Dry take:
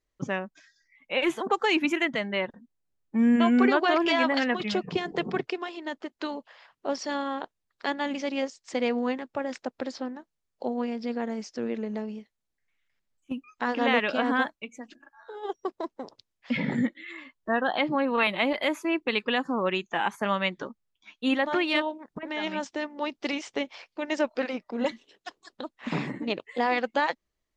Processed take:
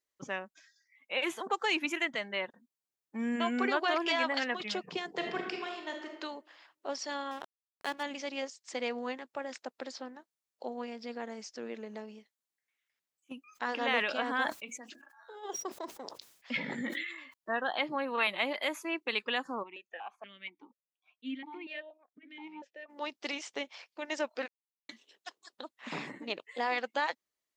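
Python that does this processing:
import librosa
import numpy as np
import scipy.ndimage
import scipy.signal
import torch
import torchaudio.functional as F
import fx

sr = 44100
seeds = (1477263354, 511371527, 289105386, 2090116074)

y = fx.reverb_throw(x, sr, start_s=5.14, length_s=0.98, rt60_s=0.87, drr_db=1.5)
y = fx.backlash(y, sr, play_db=-32.5, at=(7.31, 8.03))
y = fx.sustainer(y, sr, db_per_s=61.0, at=(13.48, 17.34))
y = fx.vowel_held(y, sr, hz=4.2, at=(19.62, 22.88), fade=0.02)
y = fx.edit(y, sr, fx.silence(start_s=24.48, length_s=0.41), tone=tone)
y = fx.highpass(y, sr, hz=530.0, slope=6)
y = fx.high_shelf(y, sr, hz=6000.0, db=7.0)
y = y * 10.0 ** (-5.0 / 20.0)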